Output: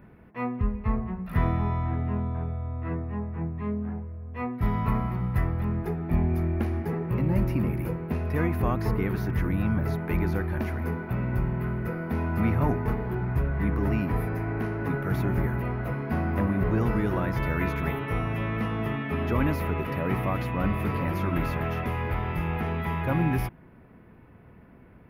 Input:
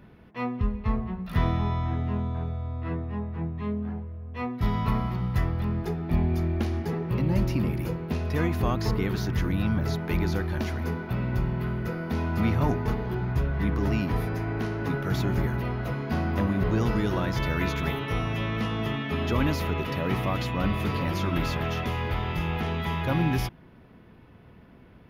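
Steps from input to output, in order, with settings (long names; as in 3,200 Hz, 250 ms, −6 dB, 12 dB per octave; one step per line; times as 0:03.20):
flat-topped bell 5,000 Hz −12 dB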